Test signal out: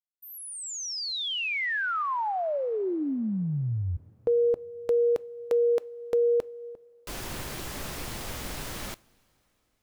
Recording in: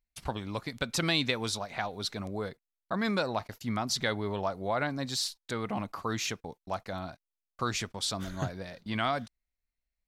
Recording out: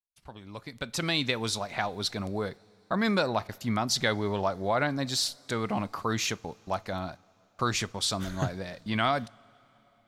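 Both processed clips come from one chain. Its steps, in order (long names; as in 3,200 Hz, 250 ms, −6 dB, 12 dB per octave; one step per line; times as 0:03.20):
fade in at the beginning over 1.73 s
coupled-rooms reverb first 0.31 s, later 3.9 s, from −18 dB, DRR 19 dB
level +3.5 dB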